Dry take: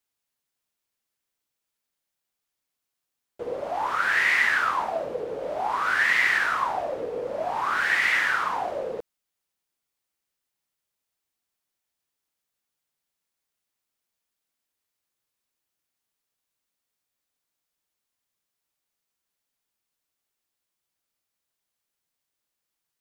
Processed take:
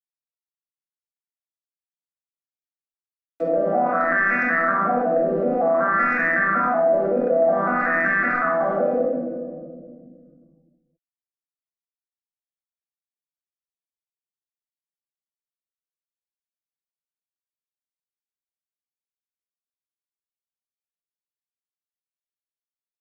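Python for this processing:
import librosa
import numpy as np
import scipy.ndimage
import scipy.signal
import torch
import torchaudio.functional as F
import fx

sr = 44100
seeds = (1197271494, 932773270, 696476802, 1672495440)

y = fx.vocoder_arp(x, sr, chord='minor triad', root=52, every_ms=187)
y = fx.lowpass(y, sr, hz=3400.0, slope=6)
y = fx.peak_eq(y, sr, hz=360.0, db=4.0, octaves=0.96)
y = np.clip(y, -10.0 ** (-17.0 / 20.0), 10.0 ** (-17.0 / 20.0))
y = fx.fixed_phaser(y, sr, hz=620.0, stages=8)
y = np.sign(y) * np.maximum(np.abs(y) - 10.0 ** (-58.5 / 20.0), 0.0)
y = fx.env_lowpass_down(y, sr, base_hz=1700.0, full_db=-29.0)
y = fx.room_shoebox(y, sr, seeds[0], volume_m3=480.0, walls='mixed', distance_m=1.6)
y = fx.env_flatten(y, sr, amount_pct=50)
y = y * librosa.db_to_amplitude(2.0)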